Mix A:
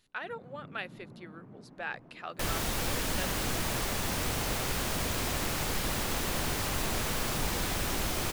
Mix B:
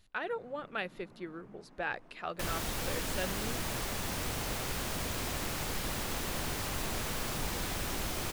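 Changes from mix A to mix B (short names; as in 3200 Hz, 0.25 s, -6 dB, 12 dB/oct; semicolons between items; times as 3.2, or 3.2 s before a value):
speech: add low shelf 430 Hz +11.5 dB; first sound: add tilt +3.5 dB/oct; second sound -4.0 dB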